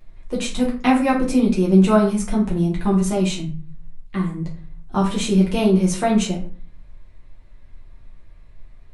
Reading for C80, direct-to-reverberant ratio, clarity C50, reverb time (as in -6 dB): 13.0 dB, -4.5 dB, 7.5 dB, 0.40 s